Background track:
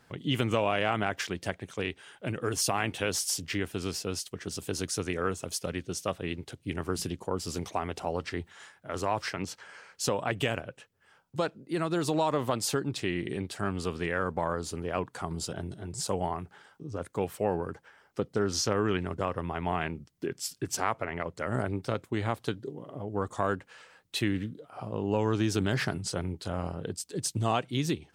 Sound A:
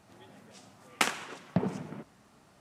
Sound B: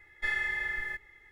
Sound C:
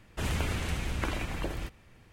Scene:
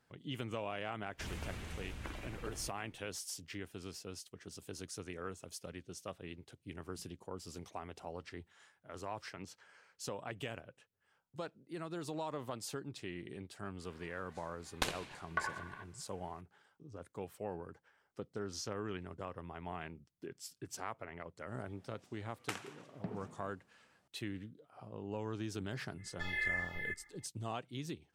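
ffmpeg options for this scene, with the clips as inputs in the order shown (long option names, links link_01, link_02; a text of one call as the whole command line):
ffmpeg -i bed.wav -i cue0.wav -i cue1.wav -i cue2.wav -filter_complex "[1:a]asplit=2[link_01][link_02];[0:a]volume=-13.5dB[link_03];[link_01]aeval=exprs='val(0)*sin(2*PI*1300*n/s)':channel_layout=same[link_04];[link_02]aecho=1:1:172:0.112[link_05];[2:a]asplit=2[link_06][link_07];[link_07]afreqshift=-2.2[link_08];[link_06][link_08]amix=inputs=2:normalize=1[link_09];[3:a]atrim=end=2.12,asetpts=PTS-STARTPTS,volume=-13dB,afade=type=in:duration=0.004:curve=hsin,afade=type=out:start_time=2.116:duration=0.004:curve=hsin,adelay=1020[link_10];[link_04]atrim=end=2.6,asetpts=PTS-STARTPTS,volume=-5.5dB,afade=type=in:duration=0.004:curve=hsin,afade=type=out:start_time=2.596:duration=0.004:curve=hsin,adelay=13810[link_11];[link_05]atrim=end=2.6,asetpts=PTS-STARTPTS,volume=-14.5dB,afade=type=in:duration=0.004:curve=hsin,afade=type=out:start_time=2.596:duration=0.004:curve=hsin,adelay=947268S[link_12];[link_09]atrim=end=1.31,asetpts=PTS-STARTPTS,volume=-2dB,afade=type=in:duration=0.05,afade=type=out:start_time=1.26:duration=0.05,adelay=25970[link_13];[link_03][link_10][link_11][link_12][link_13]amix=inputs=5:normalize=0" out.wav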